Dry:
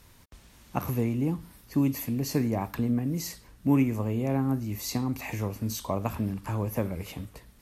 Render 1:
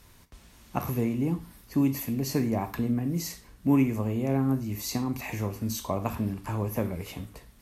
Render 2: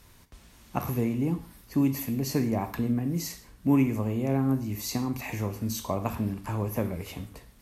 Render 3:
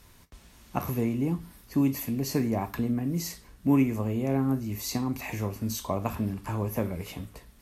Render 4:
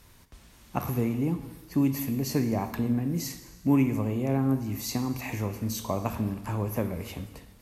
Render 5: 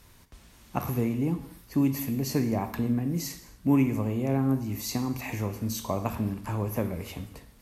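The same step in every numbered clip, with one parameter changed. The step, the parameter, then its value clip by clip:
non-linear reverb, gate: 130, 190, 80, 450, 300 ms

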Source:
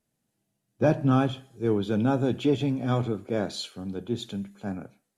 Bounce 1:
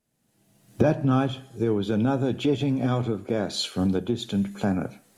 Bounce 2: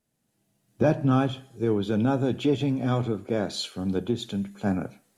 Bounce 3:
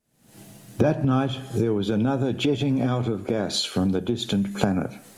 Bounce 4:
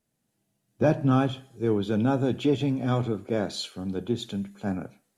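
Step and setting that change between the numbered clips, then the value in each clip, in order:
recorder AGC, rising by: 31, 13, 83, 5.1 dB/s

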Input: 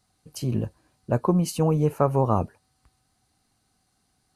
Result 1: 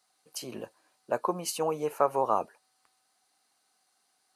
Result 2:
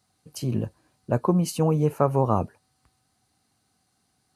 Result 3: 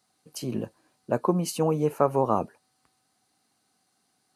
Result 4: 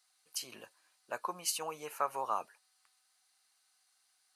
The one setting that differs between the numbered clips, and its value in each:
HPF, cutoff: 560, 79, 220, 1400 Hz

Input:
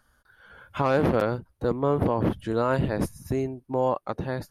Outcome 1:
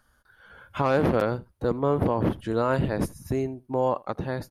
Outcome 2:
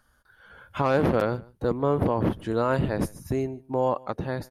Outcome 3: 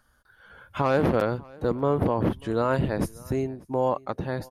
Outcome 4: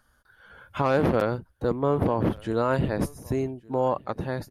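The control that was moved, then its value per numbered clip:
echo, time: 80, 149, 591, 1163 ms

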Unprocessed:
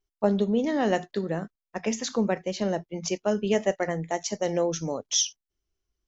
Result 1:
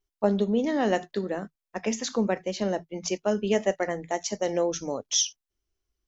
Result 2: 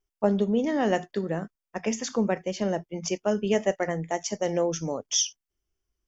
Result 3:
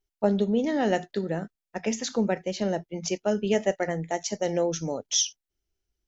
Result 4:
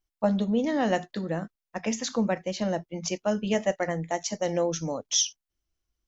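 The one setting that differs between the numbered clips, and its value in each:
notch, frequency: 160, 4000, 1100, 400 Hz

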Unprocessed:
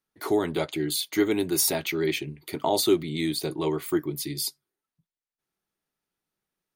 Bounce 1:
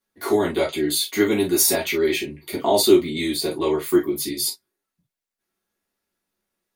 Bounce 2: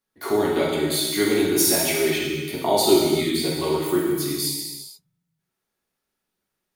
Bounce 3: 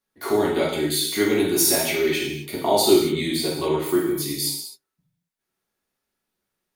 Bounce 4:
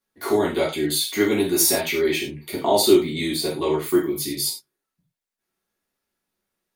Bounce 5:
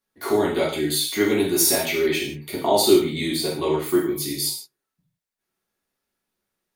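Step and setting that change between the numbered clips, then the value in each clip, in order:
non-linear reverb, gate: 80, 510, 290, 130, 190 ms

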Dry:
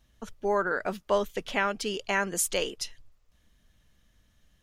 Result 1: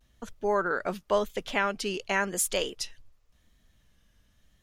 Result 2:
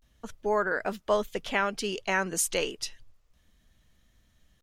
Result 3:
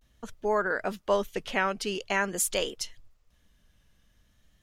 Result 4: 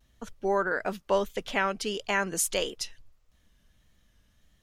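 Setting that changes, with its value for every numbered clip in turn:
vibrato, rate: 0.91, 0.31, 0.46, 1.6 Hz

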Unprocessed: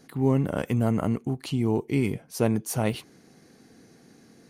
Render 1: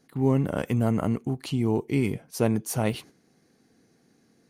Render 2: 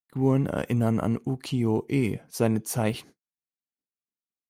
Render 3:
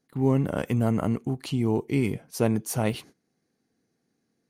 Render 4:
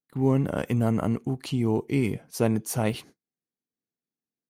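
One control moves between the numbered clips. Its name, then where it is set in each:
gate, range: -9, -59, -21, -43 dB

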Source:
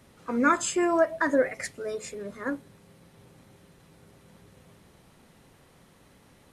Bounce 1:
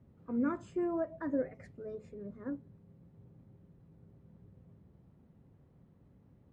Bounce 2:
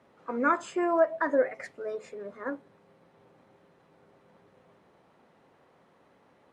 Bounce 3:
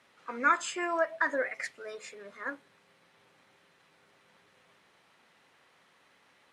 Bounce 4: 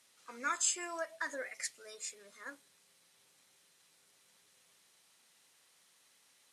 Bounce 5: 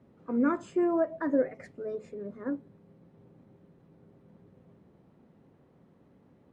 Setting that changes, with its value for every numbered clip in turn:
band-pass, frequency: 100, 730, 2000, 6900, 250 Hz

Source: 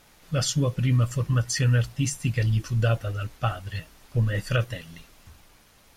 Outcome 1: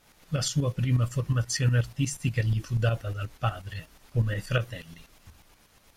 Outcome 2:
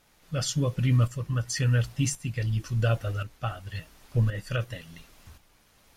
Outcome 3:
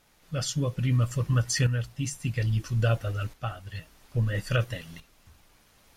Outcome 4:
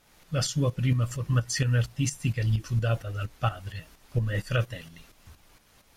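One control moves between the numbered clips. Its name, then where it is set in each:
tremolo, rate: 8.3, 0.93, 0.6, 4.3 Hz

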